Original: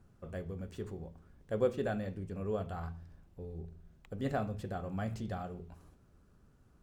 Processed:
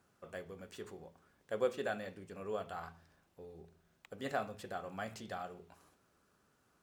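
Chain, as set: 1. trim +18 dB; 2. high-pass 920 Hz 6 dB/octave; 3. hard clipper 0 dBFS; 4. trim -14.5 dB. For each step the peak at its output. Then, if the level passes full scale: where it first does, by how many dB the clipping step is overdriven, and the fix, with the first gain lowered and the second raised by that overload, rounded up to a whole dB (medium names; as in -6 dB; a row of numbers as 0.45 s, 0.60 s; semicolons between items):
-1.0 dBFS, -5.5 dBFS, -5.5 dBFS, -20.0 dBFS; nothing clips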